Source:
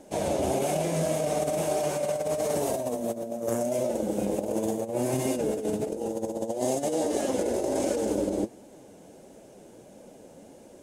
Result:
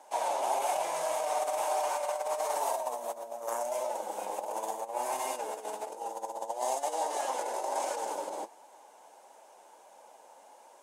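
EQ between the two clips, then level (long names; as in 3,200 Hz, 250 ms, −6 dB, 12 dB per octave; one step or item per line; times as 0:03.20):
high-pass with resonance 910 Hz, resonance Q 4.5
−3.5 dB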